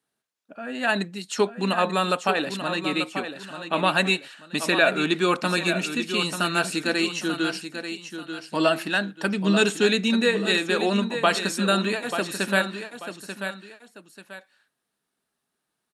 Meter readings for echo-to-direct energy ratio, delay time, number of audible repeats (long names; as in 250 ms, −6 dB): −8.5 dB, 888 ms, 2